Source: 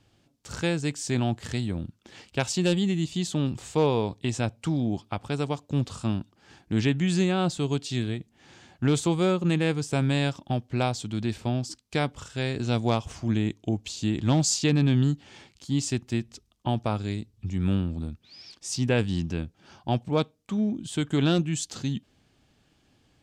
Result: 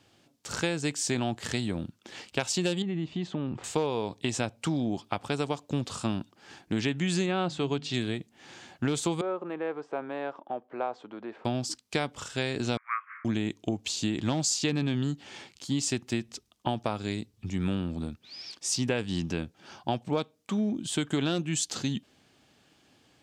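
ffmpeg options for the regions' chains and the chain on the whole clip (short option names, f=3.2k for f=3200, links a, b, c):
-filter_complex "[0:a]asettb=1/sr,asplit=3[a][b][c];[a]atrim=end=2.824[d];[b]atrim=start=2.82:end=3.64,asetpts=PTS-STARTPTS,afade=t=in:d=0.004:c=qsin,afade=t=out:st=0.816:d=0.004:c=qsin,lowpass=1.9k,acompressor=threshold=-27dB:ratio=6:attack=3.2:release=140:knee=1:detection=peak[e];[c]atrim=start=3.636[f];[d][e]acrossfade=d=0.004:c1=hsin:c2=qsin[g];[g][f]acrossfade=d=0.004:c1=qsin:c2=hsin,asettb=1/sr,asplit=3[h][i][j];[h]atrim=end=7.264[k];[i]atrim=start=7.26:end=7.94,asetpts=PTS-STARTPTS,afade=t=in:d=0.004:c=qsin,afade=t=out:st=0.676:d=0.004:c=qsin,lowpass=2.7k,aemphasis=mode=production:type=50kf,bandreject=f=50:t=h:w=6,bandreject=f=100:t=h:w=6,bandreject=f=150:t=h:w=6,bandreject=f=200:t=h:w=6,bandreject=f=250:t=h:w=6,bandreject=f=300:t=h:w=6[l];[j]atrim=start=7.936[m];[k][l]acrossfade=d=0.004:c1=hsin:c2=qsin[n];[n][m]acrossfade=d=0.004:c1=qsin:c2=hsin,asettb=1/sr,asplit=3[o][p][q];[o]atrim=end=9.214[r];[p]atrim=start=9.21:end=11.45,asetpts=PTS-STARTPTS,afade=t=in:d=0.004:c=qsin,afade=t=out:st=2.236:d=0.004:c=qsin,acompressor=threshold=-29dB:ratio=2:attack=3.2:release=140:knee=1:detection=peak,asuperpass=centerf=740:order=4:qfactor=0.7[s];[q]atrim=start=11.446[t];[r][s]acrossfade=d=0.004:c1=hsin:c2=qsin[u];[u][t]acrossfade=d=0.004:c1=qsin:c2=hsin,asettb=1/sr,asplit=3[v][w][x];[v]atrim=end=12.774[y];[w]atrim=start=12.77:end=13.25,asetpts=PTS-STARTPTS,afade=t=in:d=0.004:c=qsin,afade=t=out:st=0.476:d=0.004:c=qsin,acontrast=37,asuperpass=centerf=1600:order=12:qfactor=1.5[z];[x]atrim=start=13.246[aa];[y][z]acrossfade=d=0.004:c1=hsin:c2=qsin[ab];[ab][aa]acrossfade=d=0.004:c1=qsin:c2=hsin,highpass=f=270:p=1,acompressor=threshold=-29dB:ratio=6,volume=4.5dB"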